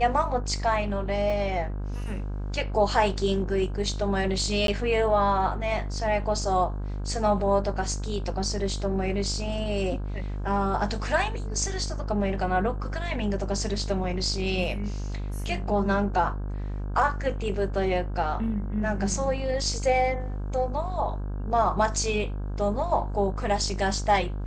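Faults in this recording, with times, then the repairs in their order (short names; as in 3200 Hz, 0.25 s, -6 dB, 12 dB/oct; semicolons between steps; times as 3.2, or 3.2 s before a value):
buzz 50 Hz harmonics 33 -31 dBFS
1.3 gap 2.5 ms
4.67–4.68 gap 12 ms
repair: de-hum 50 Hz, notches 33; interpolate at 1.3, 2.5 ms; interpolate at 4.67, 12 ms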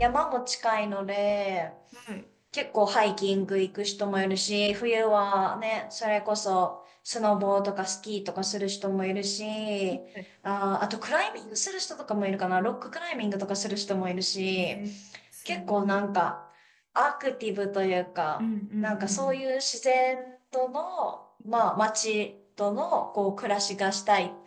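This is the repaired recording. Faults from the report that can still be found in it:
none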